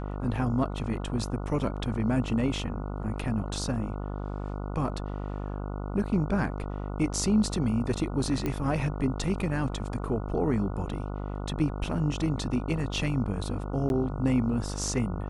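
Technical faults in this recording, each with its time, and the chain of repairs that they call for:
buzz 50 Hz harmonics 29 -34 dBFS
8.46 s: pop -17 dBFS
13.89–13.90 s: dropout 11 ms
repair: de-click; de-hum 50 Hz, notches 29; interpolate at 13.89 s, 11 ms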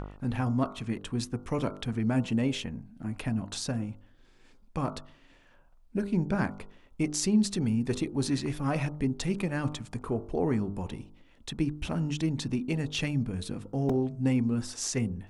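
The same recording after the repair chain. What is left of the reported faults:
nothing left

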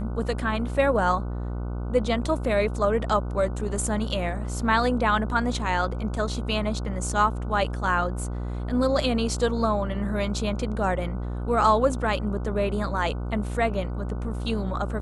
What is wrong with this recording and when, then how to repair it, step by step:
buzz 60 Hz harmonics 25 -30 dBFS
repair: de-hum 60 Hz, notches 25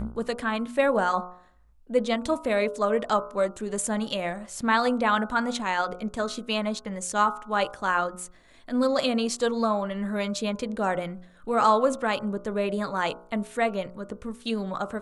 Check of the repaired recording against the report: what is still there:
nothing left

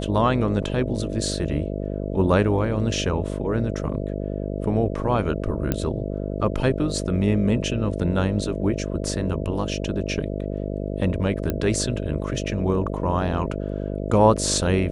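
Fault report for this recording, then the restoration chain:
buzz 50 Hz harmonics 13 -28 dBFS
5.72 s: pop -9 dBFS
11.50 s: pop -11 dBFS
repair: de-click; de-hum 50 Hz, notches 13

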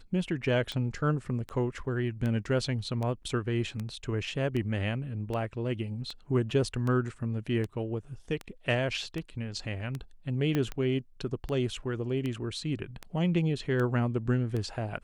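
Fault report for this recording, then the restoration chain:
tick 78 rpm -22 dBFS
10.55 s: pop -16 dBFS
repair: de-click

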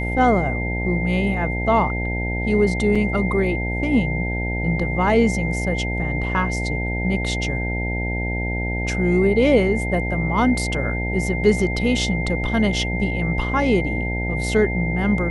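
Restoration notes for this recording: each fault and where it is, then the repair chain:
buzz 60 Hz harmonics 15 -25 dBFS
whine 2.1 kHz -27 dBFS
2.95–2.96 s: dropout 5.2 ms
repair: band-stop 2.1 kHz, Q 30; de-hum 60 Hz, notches 15; interpolate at 2.95 s, 5.2 ms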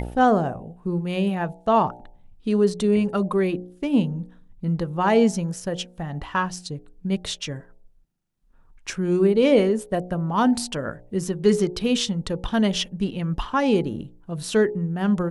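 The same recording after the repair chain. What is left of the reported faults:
nothing left

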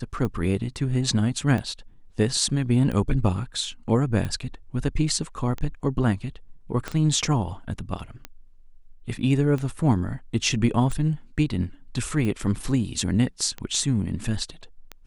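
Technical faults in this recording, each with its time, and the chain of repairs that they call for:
tick 45 rpm -18 dBFS
6.88 s: pop -15 dBFS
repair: de-click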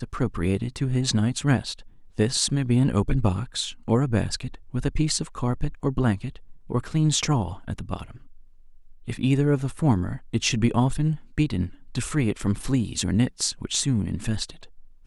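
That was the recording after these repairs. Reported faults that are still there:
6.88 s: pop

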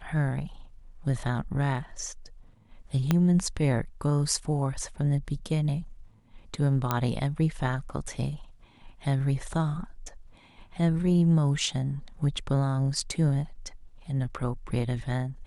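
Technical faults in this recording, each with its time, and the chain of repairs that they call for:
3.11 s: pop -10 dBFS
6.91 s: pop -11 dBFS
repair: de-click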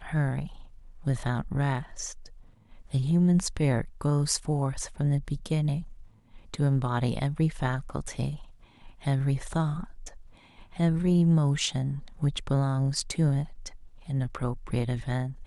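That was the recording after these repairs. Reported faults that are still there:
3.11 s: pop
6.91 s: pop

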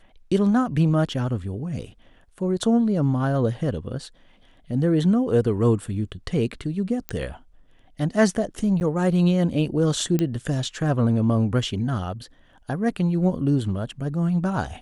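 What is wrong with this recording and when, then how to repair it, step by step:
7.09 s: pop -12 dBFS
8.80–8.81 s: dropout 9.8 ms
10.19 s: pop -11 dBFS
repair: de-click; interpolate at 8.80 s, 9.8 ms

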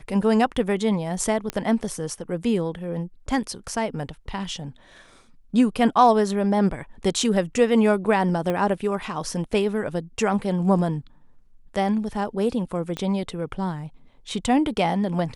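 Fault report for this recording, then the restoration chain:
1.50 s: pop -12 dBFS
8.50 s: pop -14 dBFS
12.97 s: pop -16 dBFS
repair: de-click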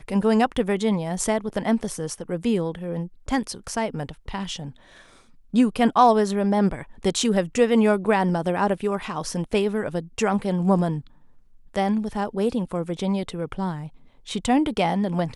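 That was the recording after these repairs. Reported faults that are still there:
8.50 s: pop
12.97 s: pop

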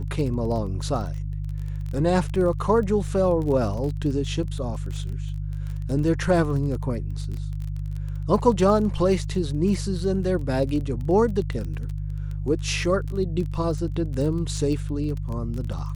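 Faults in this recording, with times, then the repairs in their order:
crackle 21 per s -30 dBFS
hum 50 Hz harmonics 3 -29 dBFS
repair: de-click; de-hum 50 Hz, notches 3

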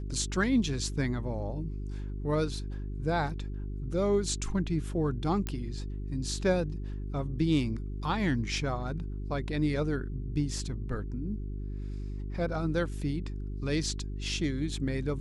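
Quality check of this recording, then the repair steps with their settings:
hum 50 Hz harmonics 8 -36 dBFS
5.47 s: pop -19 dBFS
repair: de-click; de-hum 50 Hz, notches 8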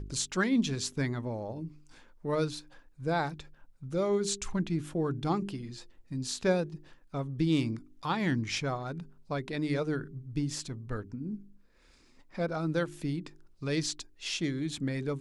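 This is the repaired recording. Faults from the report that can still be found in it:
nothing left

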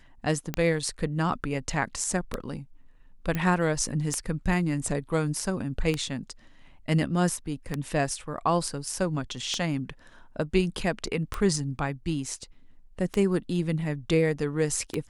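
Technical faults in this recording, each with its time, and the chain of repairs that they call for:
tick 33 1/3 rpm -13 dBFS
3.35 s: pop -15 dBFS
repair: de-click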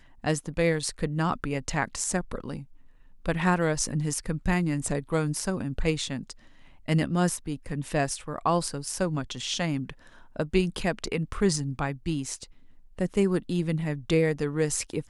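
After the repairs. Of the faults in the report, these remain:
nothing left

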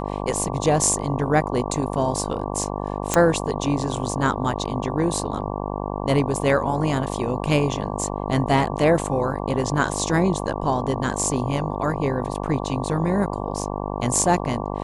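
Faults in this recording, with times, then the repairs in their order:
buzz 50 Hz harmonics 23 -28 dBFS
3.14 s: pop -4 dBFS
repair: de-click; de-hum 50 Hz, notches 23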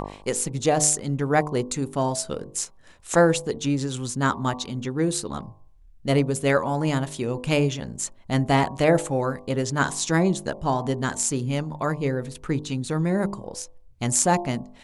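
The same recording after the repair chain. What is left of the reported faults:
nothing left

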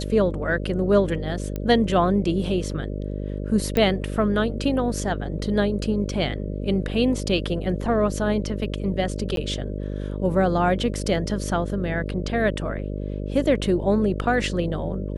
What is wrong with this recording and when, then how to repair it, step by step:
buzz 50 Hz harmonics 12 -29 dBFS
1.56 s: pop -16 dBFS
3.77 s: pop -9 dBFS
9.36–9.37 s: dropout 12 ms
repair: de-click; de-hum 50 Hz, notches 12; interpolate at 9.36 s, 12 ms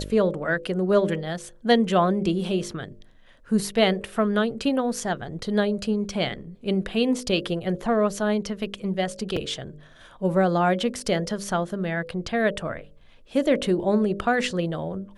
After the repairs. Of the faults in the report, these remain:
nothing left

